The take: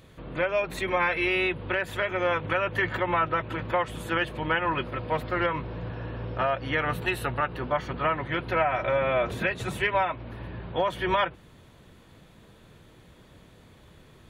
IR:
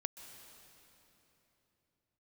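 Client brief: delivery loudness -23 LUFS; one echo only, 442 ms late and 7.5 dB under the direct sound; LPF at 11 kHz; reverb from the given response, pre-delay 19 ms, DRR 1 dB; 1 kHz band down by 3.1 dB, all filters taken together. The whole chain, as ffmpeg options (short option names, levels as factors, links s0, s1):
-filter_complex "[0:a]lowpass=11000,equalizer=f=1000:t=o:g=-4,aecho=1:1:442:0.422,asplit=2[s0][s1];[1:a]atrim=start_sample=2205,adelay=19[s2];[s1][s2]afir=irnorm=-1:irlink=0,volume=1.06[s3];[s0][s3]amix=inputs=2:normalize=0,volume=1.33"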